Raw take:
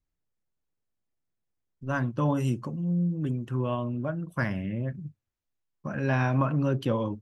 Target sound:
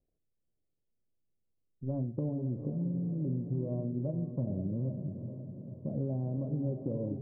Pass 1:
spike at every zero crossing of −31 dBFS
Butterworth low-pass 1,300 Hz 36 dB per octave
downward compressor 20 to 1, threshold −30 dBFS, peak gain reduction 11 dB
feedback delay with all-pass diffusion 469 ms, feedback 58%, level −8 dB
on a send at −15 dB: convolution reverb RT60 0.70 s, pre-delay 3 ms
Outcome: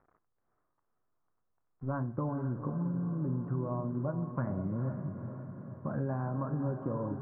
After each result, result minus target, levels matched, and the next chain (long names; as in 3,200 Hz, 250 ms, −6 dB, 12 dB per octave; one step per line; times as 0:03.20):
1,000 Hz band +15.5 dB; spike at every zero crossing: distortion +12 dB
spike at every zero crossing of −31 dBFS
Butterworth low-pass 600 Hz 36 dB per octave
downward compressor 20 to 1, threshold −30 dBFS, peak gain reduction 10.5 dB
feedback delay with all-pass diffusion 469 ms, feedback 58%, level −8 dB
on a send at −15 dB: convolution reverb RT60 0.70 s, pre-delay 3 ms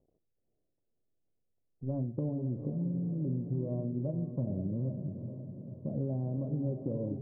spike at every zero crossing: distortion +12 dB
spike at every zero crossing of −43 dBFS
Butterworth low-pass 600 Hz 36 dB per octave
downward compressor 20 to 1, threshold −30 dBFS, peak gain reduction 10.5 dB
feedback delay with all-pass diffusion 469 ms, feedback 58%, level −8 dB
on a send at −15 dB: convolution reverb RT60 0.70 s, pre-delay 3 ms